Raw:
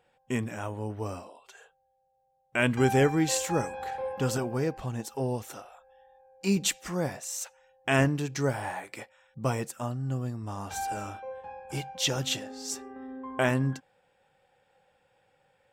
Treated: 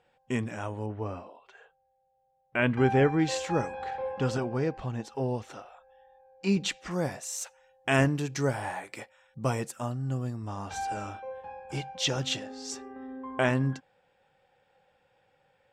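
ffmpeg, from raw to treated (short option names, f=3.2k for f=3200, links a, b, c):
-af "asetnsamples=n=441:p=0,asendcmd='0.86 lowpass f 2700;3.19 lowpass f 4500;6.91 lowpass f 12000;10.47 lowpass f 6300',lowpass=7.3k"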